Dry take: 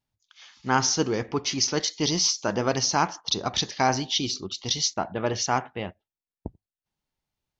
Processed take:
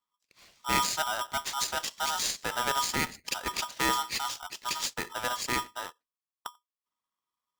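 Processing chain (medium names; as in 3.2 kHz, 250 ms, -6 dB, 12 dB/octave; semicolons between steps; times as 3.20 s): peaking EQ 130 Hz +13 dB 0.35 oct; polarity switched at an audio rate 1.1 kHz; trim -7.5 dB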